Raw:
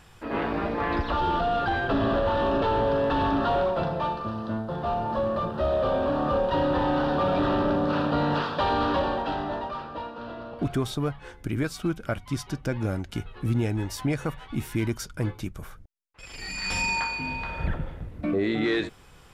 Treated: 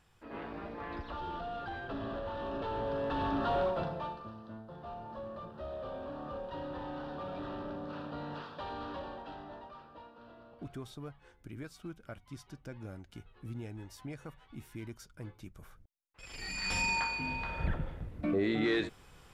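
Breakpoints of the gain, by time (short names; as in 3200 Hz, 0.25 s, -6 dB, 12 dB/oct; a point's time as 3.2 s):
2.37 s -15 dB
3.66 s -6 dB
4.43 s -17 dB
15.3 s -17 dB
16.34 s -5 dB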